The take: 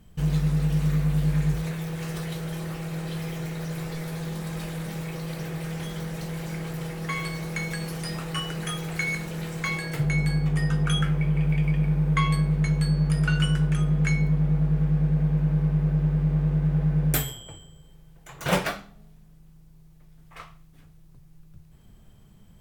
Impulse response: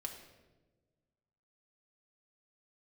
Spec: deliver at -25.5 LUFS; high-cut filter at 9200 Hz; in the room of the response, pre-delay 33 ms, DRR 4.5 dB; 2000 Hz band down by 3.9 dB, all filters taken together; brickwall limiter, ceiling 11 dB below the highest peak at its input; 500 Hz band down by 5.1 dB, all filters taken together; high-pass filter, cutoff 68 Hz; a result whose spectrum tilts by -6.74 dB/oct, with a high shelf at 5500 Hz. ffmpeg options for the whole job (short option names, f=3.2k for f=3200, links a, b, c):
-filter_complex "[0:a]highpass=68,lowpass=9.2k,equalizer=f=500:t=o:g=-6,equalizer=f=2k:t=o:g=-5,highshelf=f=5.5k:g=4.5,alimiter=limit=-21.5dB:level=0:latency=1,asplit=2[a][b];[1:a]atrim=start_sample=2205,adelay=33[c];[b][c]afir=irnorm=-1:irlink=0,volume=-2.5dB[d];[a][d]amix=inputs=2:normalize=0,volume=1.5dB"